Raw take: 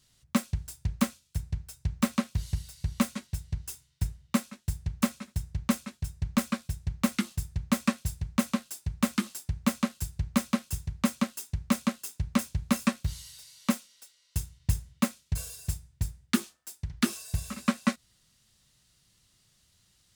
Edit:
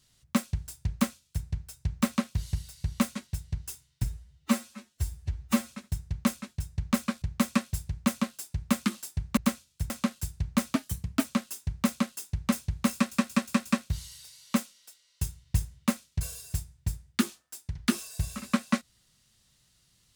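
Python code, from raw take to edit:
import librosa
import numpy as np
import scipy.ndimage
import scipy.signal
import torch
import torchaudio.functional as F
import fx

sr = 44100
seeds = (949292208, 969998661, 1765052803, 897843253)

y = fx.edit(x, sr, fx.duplicate(start_s=0.92, length_s=0.53, to_s=9.69),
    fx.stretch_span(start_s=4.03, length_s=1.12, factor=1.5),
    fx.cut(start_s=6.66, length_s=0.88),
    fx.speed_span(start_s=10.54, length_s=0.57, speed=1.15),
    fx.stutter(start_s=12.8, slice_s=0.18, count=5), tone=tone)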